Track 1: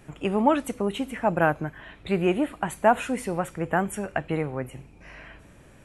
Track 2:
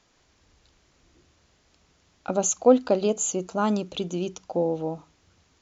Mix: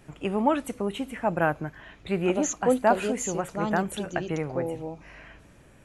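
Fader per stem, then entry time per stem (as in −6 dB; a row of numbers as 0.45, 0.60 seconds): −2.5, −6.0 decibels; 0.00, 0.00 seconds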